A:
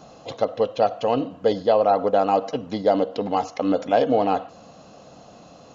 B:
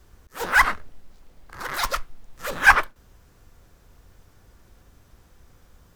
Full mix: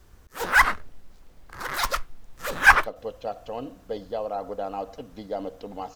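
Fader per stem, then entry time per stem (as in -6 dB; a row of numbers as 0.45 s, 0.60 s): -12.5 dB, -0.5 dB; 2.45 s, 0.00 s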